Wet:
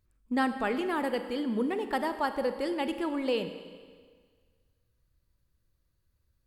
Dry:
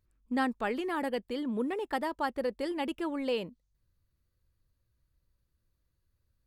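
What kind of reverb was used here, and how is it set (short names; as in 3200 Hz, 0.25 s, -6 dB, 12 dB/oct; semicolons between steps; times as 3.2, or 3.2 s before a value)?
Schroeder reverb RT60 1.7 s, combs from 31 ms, DRR 9 dB; gain +2 dB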